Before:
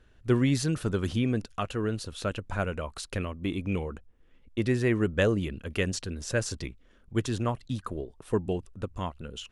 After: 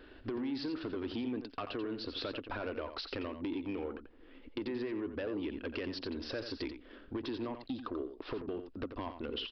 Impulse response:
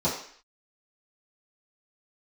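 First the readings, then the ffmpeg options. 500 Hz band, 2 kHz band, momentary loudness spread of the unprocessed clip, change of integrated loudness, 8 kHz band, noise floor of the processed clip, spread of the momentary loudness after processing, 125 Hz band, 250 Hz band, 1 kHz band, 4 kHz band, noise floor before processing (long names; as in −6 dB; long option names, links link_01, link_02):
−8.5 dB, −10.5 dB, 11 LU, −9.0 dB, below −25 dB, −56 dBFS, 5 LU, −20.0 dB, −7.5 dB, −7.5 dB, −3.5 dB, −59 dBFS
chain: -filter_complex "[0:a]lowshelf=frequency=210:width_type=q:width=3:gain=-10,alimiter=limit=-22dB:level=0:latency=1:release=17,acompressor=threshold=-42dB:ratio=12,aresample=11025,asoftclip=type=tanh:threshold=-39.5dB,aresample=44100,asplit=2[link_01][link_02];[link_02]adelay=87.46,volume=-9dB,highshelf=frequency=4000:gain=-1.97[link_03];[link_01][link_03]amix=inputs=2:normalize=0,volume=9dB"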